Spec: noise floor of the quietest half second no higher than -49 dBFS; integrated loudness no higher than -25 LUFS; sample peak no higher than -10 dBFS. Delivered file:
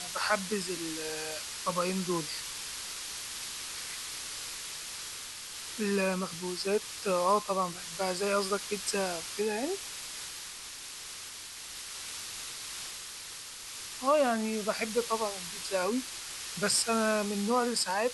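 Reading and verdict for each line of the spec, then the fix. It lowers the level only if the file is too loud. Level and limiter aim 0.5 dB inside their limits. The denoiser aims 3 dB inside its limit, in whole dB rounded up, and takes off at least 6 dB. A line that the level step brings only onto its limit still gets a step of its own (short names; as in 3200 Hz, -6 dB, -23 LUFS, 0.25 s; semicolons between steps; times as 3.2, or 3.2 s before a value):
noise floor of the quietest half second -44 dBFS: fail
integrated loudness -32.5 LUFS: OK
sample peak -15.0 dBFS: OK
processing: denoiser 8 dB, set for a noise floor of -44 dBFS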